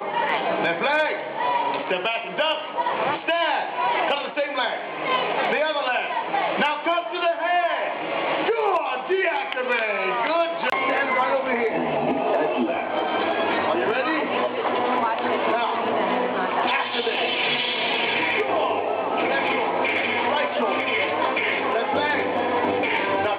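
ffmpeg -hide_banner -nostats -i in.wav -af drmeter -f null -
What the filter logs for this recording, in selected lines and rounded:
Channel 1: DR: 10.0
Overall DR: 10.0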